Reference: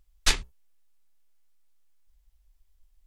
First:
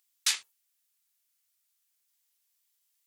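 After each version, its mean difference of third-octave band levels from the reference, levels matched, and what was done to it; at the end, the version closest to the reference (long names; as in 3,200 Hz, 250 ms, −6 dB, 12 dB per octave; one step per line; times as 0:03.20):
11.0 dB: Bessel high-pass filter 1,600 Hz, order 2
brickwall limiter −17.5 dBFS, peak gain reduction 7.5 dB
high-shelf EQ 5,000 Hz +9 dB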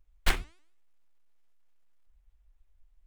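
7.0 dB: running median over 9 samples
hum removal 334.3 Hz, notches 30
pitch modulation by a square or saw wave saw up 6.8 Hz, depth 250 cents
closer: second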